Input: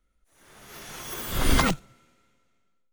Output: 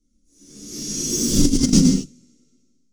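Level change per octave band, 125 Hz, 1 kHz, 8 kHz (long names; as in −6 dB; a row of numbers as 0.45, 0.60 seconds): +9.0 dB, below −15 dB, +14.0 dB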